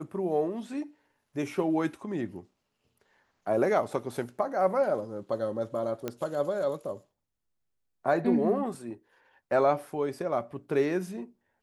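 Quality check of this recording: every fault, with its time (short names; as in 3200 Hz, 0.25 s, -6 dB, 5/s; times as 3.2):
6.08 pop -18 dBFS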